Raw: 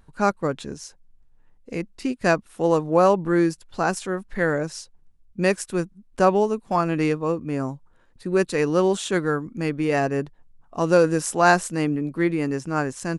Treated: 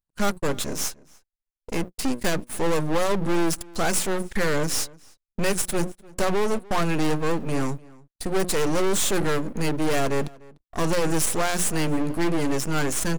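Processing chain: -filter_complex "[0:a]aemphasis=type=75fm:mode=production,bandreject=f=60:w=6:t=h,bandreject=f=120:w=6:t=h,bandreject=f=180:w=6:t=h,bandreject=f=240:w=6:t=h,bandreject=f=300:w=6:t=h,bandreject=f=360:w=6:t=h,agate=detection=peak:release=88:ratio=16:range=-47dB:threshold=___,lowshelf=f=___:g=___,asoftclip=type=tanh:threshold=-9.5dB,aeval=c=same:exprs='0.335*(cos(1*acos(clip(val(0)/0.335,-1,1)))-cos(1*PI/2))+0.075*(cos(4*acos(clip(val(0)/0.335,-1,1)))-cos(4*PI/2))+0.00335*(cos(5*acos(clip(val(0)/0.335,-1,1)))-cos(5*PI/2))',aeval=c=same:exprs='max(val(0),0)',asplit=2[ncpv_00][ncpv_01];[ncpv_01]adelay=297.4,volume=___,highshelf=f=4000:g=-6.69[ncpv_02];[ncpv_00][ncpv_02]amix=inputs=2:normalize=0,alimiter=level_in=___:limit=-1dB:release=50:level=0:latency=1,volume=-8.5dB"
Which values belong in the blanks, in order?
-44dB, 230, 5.5, -23dB, 18dB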